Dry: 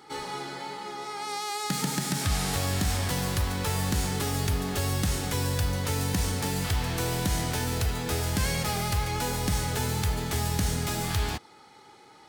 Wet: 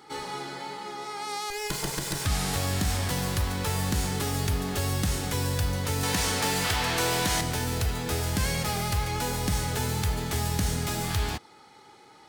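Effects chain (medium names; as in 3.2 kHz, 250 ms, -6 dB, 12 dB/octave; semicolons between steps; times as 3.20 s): 1.50–2.26 s: comb filter that takes the minimum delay 2 ms; 6.03–7.41 s: overdrive pedal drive 15 dB, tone 6.8 kHz, clips at -15.5 dBFS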